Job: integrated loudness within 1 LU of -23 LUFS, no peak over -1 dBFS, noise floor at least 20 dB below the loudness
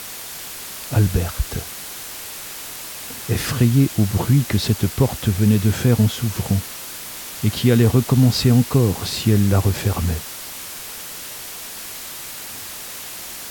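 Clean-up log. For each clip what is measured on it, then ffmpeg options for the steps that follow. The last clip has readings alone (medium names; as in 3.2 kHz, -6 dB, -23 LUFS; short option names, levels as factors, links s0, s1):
noise floor -34 dBFS; noise floor target -41 dBFS; loudness -21.0 LUFS; peak level -4.0 dBFS; loudness target -23.0 LUFS
-> -af "afftdn=nr=7:nf=-34"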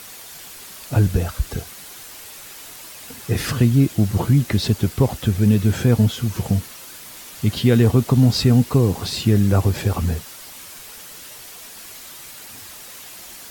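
noise floor -39 dBFS; loudness -19.0 LUFS; peak level -4.0 dBFS; loudness target -23.0 LUFS
-> -af "volume=0.631"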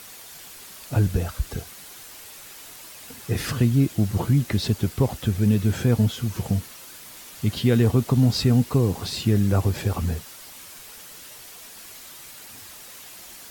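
loudness -23.0 LUFS; peak level -8.0 dBFS; noise floor -43 dBFS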